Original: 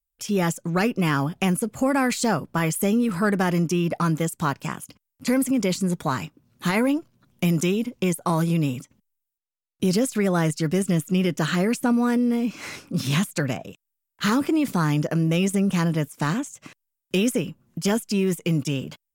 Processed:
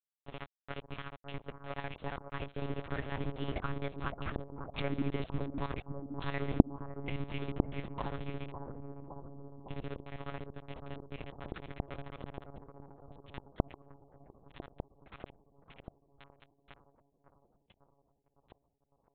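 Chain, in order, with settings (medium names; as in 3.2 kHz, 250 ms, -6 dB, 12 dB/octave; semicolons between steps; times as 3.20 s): Doppler pass-by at 5.11 s, 31 m/s, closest 3.4 m; high-pass 93 Hz 12 dB/octave; peaking EQ 320 Hz -4.5 dB 0.32 oct; compression 16:1, threshold -45 dBFS, peak gain reduction 24.5 dB; tremolo 14 Hz, depth 69%; small samples zeroed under -54 dBFS; bucket-brigade echo 556 ms, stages 4096, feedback 72%, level -7 dB; monotone LPC vocoder at 8 kHz 140 Hz; trim +17 dB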